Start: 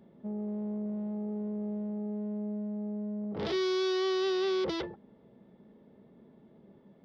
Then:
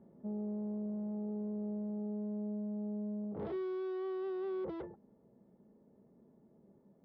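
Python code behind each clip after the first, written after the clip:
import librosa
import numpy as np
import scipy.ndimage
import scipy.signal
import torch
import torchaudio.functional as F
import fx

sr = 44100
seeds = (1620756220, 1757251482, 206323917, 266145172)

y = scipy.signal.sosfilt(scipy.signal.butter(2, 1100.0, 'lowpass', fs=sr, output='sos'), x)
y = fx.rider(y, sr, range_db=3, speed_s=0.5)
y = y * librosa.db_to_amplitude(-5.5)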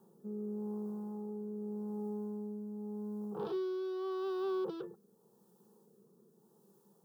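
y = fx.tilt_eq(x, sr, slope=4.0)
y = fx.fixed_phaser(y, sr, hz=410.0, stages=8)
y = fx.rotary(y, sr, hz=0.85)
y = y * librosa.db_to_amplitude(9.5)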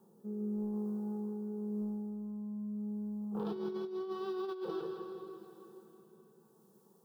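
y = fx.echo_feedback(x, sr, ms=163, feedback_pct=52, wet_db=-8.5)
y = fx.rev_plate(y, sr, seeds[0], rt60_s=3.7, hf_ratio=0.8, predelay_ms=0, drr_db=5.0)
y = fx.over_compress(y, sr, threshold_db=-35.0, ratio=-0.5)
y = y * librosa.db_to_amplitude(-2.0)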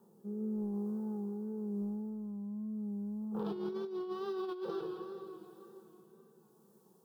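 y = fx.wow_flutter(x, sr, seeds[1], rate_hz=2.1, depth_cents=52.0)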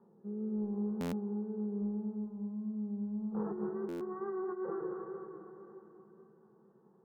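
y = fx.brickwall_lowpass(x, sr, high_hz=2000.0)
y = fx.echo_feedback(y, sr, ms=229, feedback_pct=47, wet_db=-8)
y = fx.buffer_glitch(y, sr, at_s=(1.0, 3.88), block=512, repeats=10)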